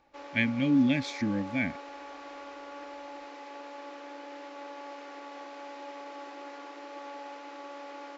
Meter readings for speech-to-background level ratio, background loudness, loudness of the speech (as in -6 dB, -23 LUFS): 15.0 dB, -43.5 LUFS, -28.5 LUFS